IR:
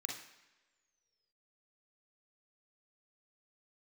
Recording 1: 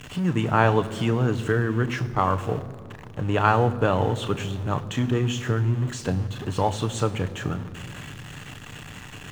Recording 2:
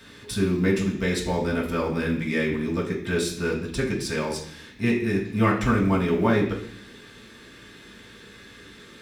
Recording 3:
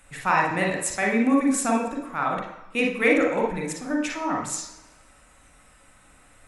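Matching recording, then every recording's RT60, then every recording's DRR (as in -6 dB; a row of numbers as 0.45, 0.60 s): 3; 2.5 s, 0.65 s, not exponential; 9.0, -5.5, -0.5 dB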